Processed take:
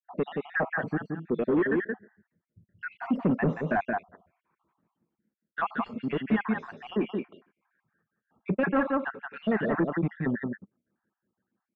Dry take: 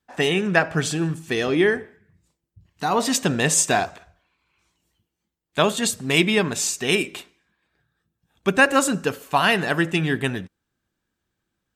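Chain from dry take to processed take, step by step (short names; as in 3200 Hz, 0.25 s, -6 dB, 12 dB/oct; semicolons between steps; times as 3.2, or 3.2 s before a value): random spectral dropouts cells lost 66%; HPF 160 Hz 12 dB/oct; on a send: echo 0.175 s -6 dB; on the sum: soft clip -21.5 dBFS, distortion -9 dB; LPF 1700 Hz 24 dB/oct; bell 210 Hz +7 dB 0.48 oct; gain +1 dB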